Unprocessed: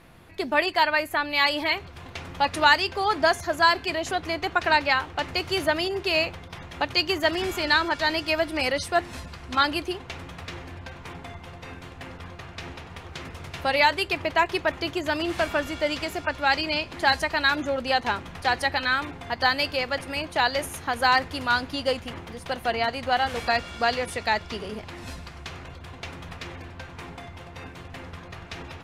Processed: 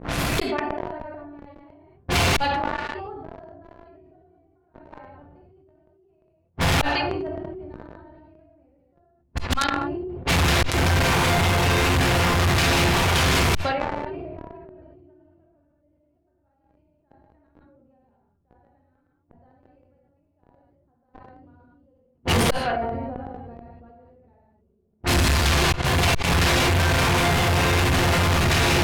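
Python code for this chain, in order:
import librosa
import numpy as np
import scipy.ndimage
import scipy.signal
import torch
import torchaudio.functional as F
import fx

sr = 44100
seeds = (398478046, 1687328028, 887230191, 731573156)

p1 = fx.rev_gated(x, sr, seeds[0], gate_ms=260, shape='flat', drr_db=-6.5)
p2 = fx.gate_flip(p1, sr, shuts_db=-19.0, range_db=-40)
p3 = fx.fuzz(p2, sr, gain_db=53.0, gate_db=-47.0)
p4 = p2 + (p3 * 10.0 ** (-7.0 / 20.0))
p5 = fx.env_lowpass(p4, sr, base_hz=360.0, full_db=-22.0)
y = fx.sustainer(p5, sr, db_per_s=21.0)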